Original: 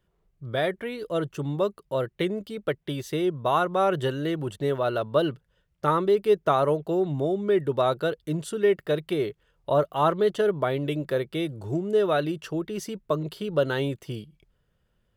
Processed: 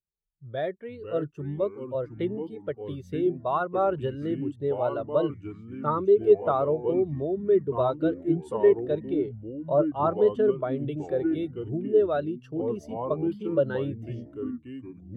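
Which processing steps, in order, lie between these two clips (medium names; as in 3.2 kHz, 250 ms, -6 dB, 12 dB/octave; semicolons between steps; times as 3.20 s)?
9.04–10.23 s: treble shelf 5.2 kHz -6 dB; ever faster or slower copies 359 ms, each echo -4 st, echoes 3, each echo -6 dB; spectral contrast expander 1.5:1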